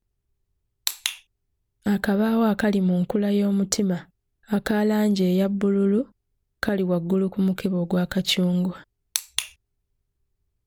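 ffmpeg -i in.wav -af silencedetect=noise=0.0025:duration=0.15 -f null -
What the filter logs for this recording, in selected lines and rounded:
silence_start: 0.00
silence_end: 0.87 | silence_duration: 0.87
silence_start: 1.22
silence_end: 1.83 | silence_duration: 0.60
silence_start: 4.09
silence_end: 4.43 | silence_duration: 0.34
silence_start: 6.12
silence_end: 6.63 | silence_duration: 0.51
silence_start: 8.84
silence_end: 9.15 | silence_duration: 0.32
silence_start: 9.55
silence_end: 10.66 | silence_duration: 1.12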